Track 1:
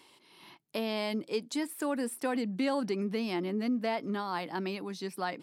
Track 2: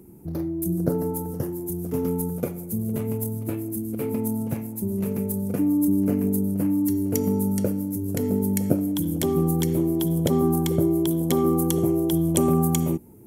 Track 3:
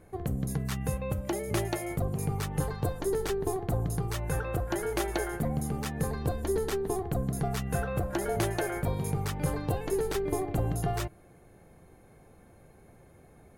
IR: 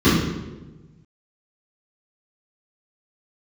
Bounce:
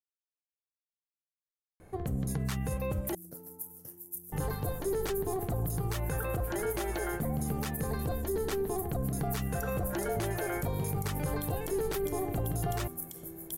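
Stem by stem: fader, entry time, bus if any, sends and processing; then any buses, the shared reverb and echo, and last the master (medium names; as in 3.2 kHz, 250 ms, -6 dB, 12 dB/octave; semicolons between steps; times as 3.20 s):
mute
-7.5 dB, 2.45 s, bus A, no send, pre-emphasis filter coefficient 0.9
+1.0 dB, 1.80 s, muted 3.15–4.32 s, bus A, no send, none
bus A: 0.0 dB, peak limiter -23.5 dBFS, peak gain reduction 11 dB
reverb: none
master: none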